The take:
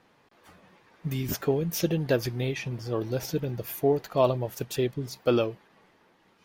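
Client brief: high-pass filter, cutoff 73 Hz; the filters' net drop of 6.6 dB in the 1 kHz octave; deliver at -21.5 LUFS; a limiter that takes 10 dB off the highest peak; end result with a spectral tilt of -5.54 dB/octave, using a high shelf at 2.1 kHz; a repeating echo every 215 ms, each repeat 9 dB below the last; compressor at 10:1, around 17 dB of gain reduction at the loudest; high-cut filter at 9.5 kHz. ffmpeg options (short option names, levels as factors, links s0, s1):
-af "highpass=73,lowpass=9500,equalizer=f=1000:t=o:g=-8.5,highshelf=f=2100:g=-5.5,acompressor=threshold=0.0126:ratio=10,alimiter=level_in=3.76:limit=0.0631:level=0:latency=1,volume=0.266,aecho=1:1:215|430|645|860:0.355|0.124|0.0435|0.0152,volume=15.8"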